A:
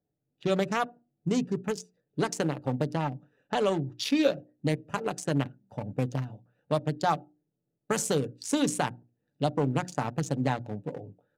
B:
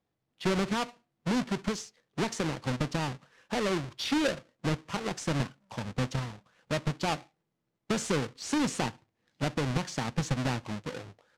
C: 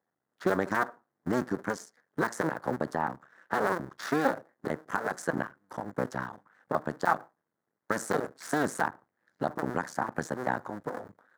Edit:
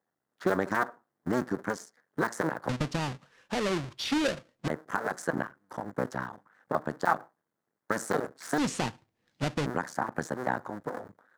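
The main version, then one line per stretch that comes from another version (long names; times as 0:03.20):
C
0:02.69–0:04.68: punch in from B
0:08.58–0:09.66: punch in from B
not used: A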